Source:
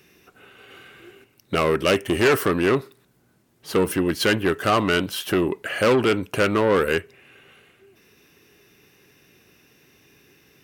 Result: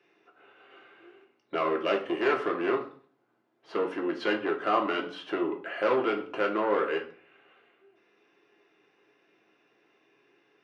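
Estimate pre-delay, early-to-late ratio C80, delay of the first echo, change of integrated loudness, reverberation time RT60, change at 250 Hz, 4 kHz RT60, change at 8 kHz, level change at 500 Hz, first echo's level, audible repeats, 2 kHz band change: 3 ms, 15.5 dB, no echo, -8.0 dB, 0.45 s, -9.0 dB, 0.35 s, under -25 dB, -7.0 dB, no echo, no echo, -9.0 dB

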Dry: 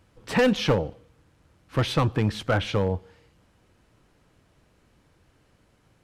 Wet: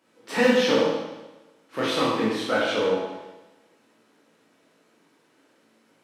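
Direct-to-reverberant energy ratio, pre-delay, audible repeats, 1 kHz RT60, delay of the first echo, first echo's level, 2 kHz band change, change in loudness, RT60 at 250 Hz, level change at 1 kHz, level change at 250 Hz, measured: -7.0 dB, 18 ms, no echo, 1.1 s, no echo, no echo, +3.5 dB, +1.5 dB, 1.1 s, +2.5 dB, +1.0 dB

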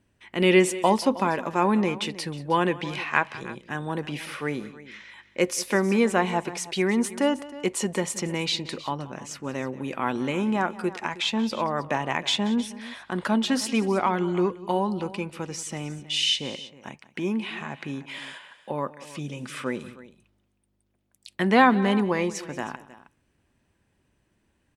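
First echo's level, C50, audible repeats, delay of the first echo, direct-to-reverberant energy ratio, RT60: -18.5 dB, no reverb, 2, 181 ms, no reverb, no reverb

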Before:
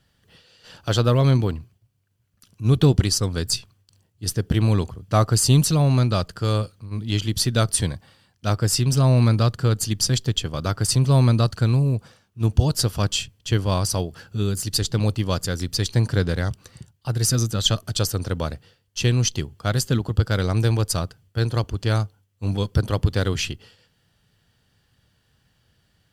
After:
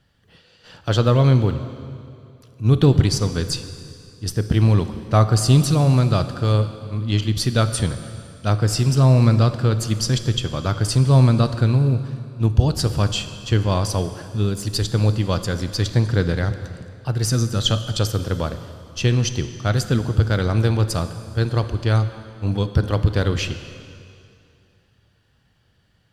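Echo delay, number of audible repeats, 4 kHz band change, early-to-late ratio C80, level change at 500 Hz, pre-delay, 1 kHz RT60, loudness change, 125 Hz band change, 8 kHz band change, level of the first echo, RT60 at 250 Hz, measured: no echo, no echo, -0.5 dB, 11.5 dB, +2.5 dB, 7 ms, 2.5 s, +2.0 dB, +2.5 dB, -4.0 dB, no echo, 2.5 s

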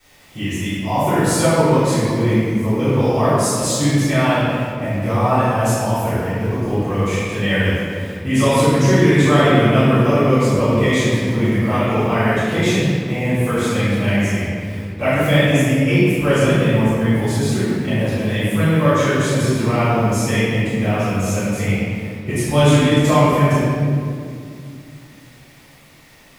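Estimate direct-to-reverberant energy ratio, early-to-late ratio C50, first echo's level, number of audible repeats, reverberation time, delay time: -22.0 dB, -5.0 dB, no echo, no echo, 2.3 s, no echo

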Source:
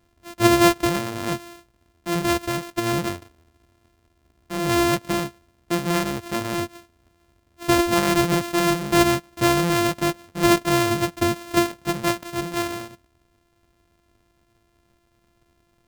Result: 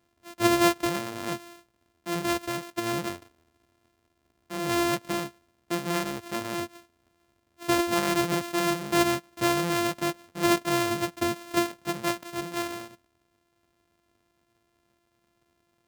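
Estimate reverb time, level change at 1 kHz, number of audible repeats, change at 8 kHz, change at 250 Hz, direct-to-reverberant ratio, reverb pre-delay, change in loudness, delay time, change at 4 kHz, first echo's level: no reverb, -5.0 dB, no echo, -5.0 dB, -6.0 dB, no reverb, no reverb, -5.5 dB, no echo, -5.0 dB, no echo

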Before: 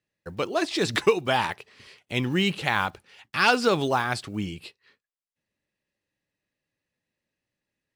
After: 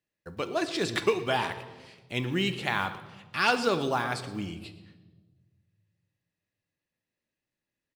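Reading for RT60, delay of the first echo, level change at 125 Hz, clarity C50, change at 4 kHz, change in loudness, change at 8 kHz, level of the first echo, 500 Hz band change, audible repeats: 1.3 s, 118 ms, -4.0 dB, 12.0 dB, -4.0 dB, -4.0 dB, -4.0 dB, -18.0 dB, -4.0 dB, 1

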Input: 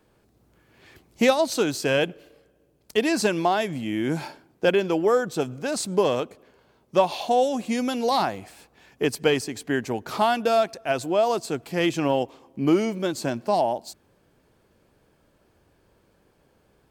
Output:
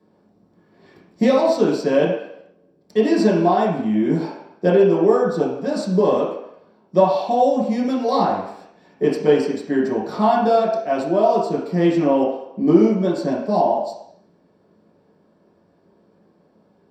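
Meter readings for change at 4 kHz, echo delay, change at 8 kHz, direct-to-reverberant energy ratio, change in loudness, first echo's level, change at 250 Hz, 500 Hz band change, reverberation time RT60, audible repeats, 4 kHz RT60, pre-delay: -4.5 dB, no echo, no reading, -6.5 dB, +5.5 dB, no echo, +7.5 dB, +6.0 dB, 0.75 s, no echo, 0.70 s, 3 ms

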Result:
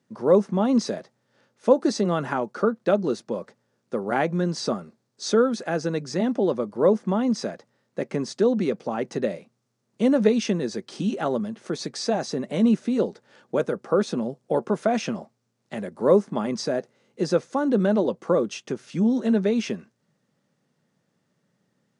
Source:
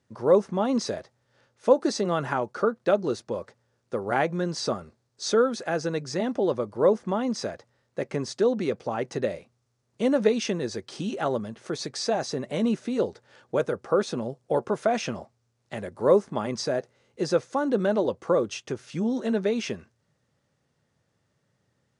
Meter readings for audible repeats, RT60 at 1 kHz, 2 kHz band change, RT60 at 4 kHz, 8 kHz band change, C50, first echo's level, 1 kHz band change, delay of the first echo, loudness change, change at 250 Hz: no echo, no reverb, 0.0 dB, no reverb, 0.0 dB, no reverb, no echo, +0.5 dB, no echo, +2.5 dB, +5.0 dB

